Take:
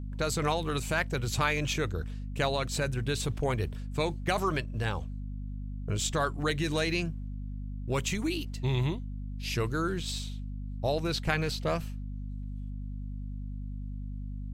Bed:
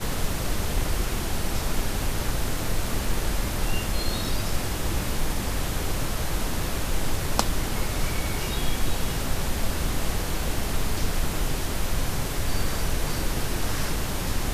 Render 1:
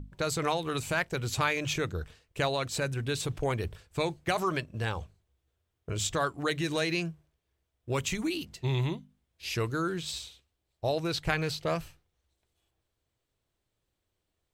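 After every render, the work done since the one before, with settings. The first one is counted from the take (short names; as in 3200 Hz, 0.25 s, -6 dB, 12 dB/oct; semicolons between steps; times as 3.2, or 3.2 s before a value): notches 50/100/150/200/250 Hz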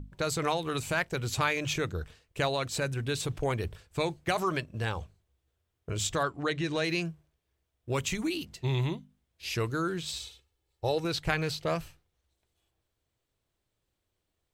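6.23–6.84 air absorption 79 m; 10.2–11.05 comb 2.3 ms, depth 61%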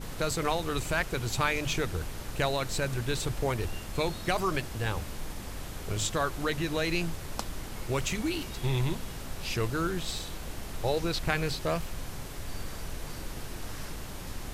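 add bed -12 dB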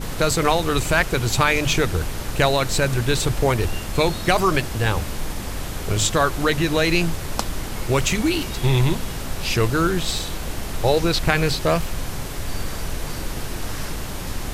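gain +10.5 dB; limiter -3 dBFS, peak gain reduction 2.5 dB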